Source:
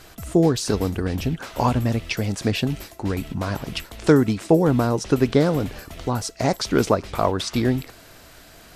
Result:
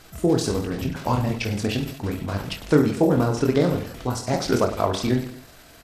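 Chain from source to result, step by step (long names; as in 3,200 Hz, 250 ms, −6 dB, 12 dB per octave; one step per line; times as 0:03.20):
reverse bouncing-ball delay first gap 40 ms, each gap 1.3×, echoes 5
tempo change 1.5×
level −3 dB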